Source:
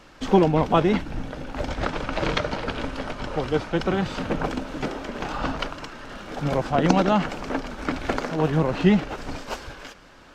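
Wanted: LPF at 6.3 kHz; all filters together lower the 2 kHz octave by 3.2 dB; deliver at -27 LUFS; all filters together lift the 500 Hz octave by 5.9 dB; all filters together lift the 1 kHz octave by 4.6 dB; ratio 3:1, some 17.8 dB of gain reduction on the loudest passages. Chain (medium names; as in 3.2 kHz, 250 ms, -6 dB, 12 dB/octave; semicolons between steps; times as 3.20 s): low-pass 6.3 kHz; peaking EQ 500 Hz +6.5 dB; peaking EQ 1 kHz +5 dB; peaking EQ 2 kHz -7 dB; compression 3:1, threshold -35 dBFS; trim +8.5 dB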